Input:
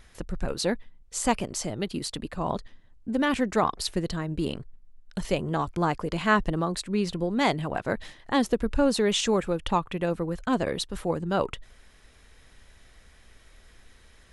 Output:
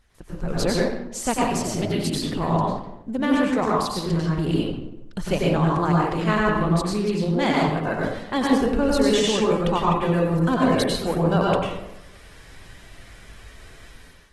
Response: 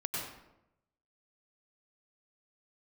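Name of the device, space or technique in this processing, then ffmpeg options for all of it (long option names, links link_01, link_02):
speakerphone in a meeting room: -filter_complex "[1:a]atrim=start_sample=2205[link_01];[0:a][link_01]afir=irnorm=-1:irlink=0,dynaudnorm=framelen=190:gausssize=5:maxgain=14dB,volume=-6.5dB" -ar 48000 -c:a libopus -b:a 16k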